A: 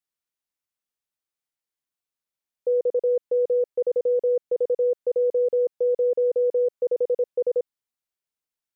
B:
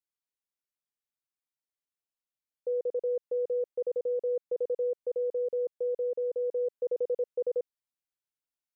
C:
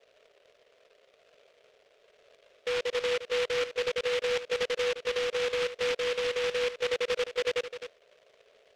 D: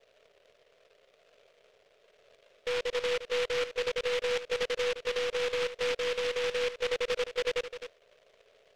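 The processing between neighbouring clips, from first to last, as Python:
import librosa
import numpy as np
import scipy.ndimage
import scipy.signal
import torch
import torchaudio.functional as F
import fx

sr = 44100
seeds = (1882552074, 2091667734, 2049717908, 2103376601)

y1 = fx.rider(x, sr, range_db=10, speed_s=0.5)
y1 = F.gain(torch.from_numpy(y1), -8.0).numpy()
y2 = y1 + 10.0 ** (-10.5 / 20.0) * np.pad(y1, (int(259 * sr / 1000.0), 0))[:len(y1)]
y2 = fx.dmg_noise_band(y2, sr, seeds[0], low_hz=410.0, high_hz=670.0, level_db=-62.0)
y2 = fx.noise_mod_delay(y2, sr, seeds[1], noise_hz=2200.0, depth_ms=0.16)
y3 = np.where(y2 < 0.0, 10.0 ** (-3.0 / 20.0) * y2, y2)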